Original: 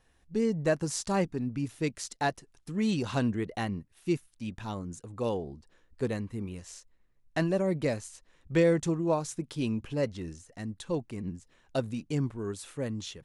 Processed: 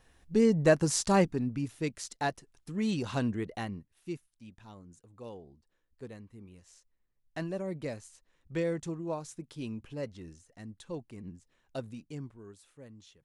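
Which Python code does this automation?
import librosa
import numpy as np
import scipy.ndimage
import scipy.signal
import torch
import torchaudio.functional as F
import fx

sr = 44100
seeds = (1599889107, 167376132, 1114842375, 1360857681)

y = fx.gain(x, sr, db=fx.line((1.14, 4.0), (1.73, -2.5), (3.46, -2.5), (4.51, -14.0), (6.42, -14.0), (7.46, -8.0), (11.87, -8.0), (12.67, -17.0)))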